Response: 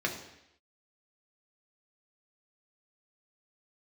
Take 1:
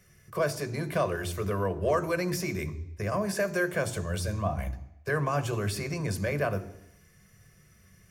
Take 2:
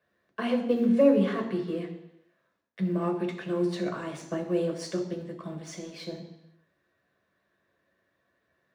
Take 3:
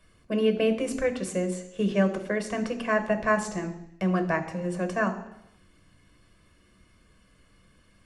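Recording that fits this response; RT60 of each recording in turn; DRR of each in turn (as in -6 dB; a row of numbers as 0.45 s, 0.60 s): 2; 0.80 s, 0.80 s, 0.80 s; 10.0 dB, 0.5 dB, 5.5 dB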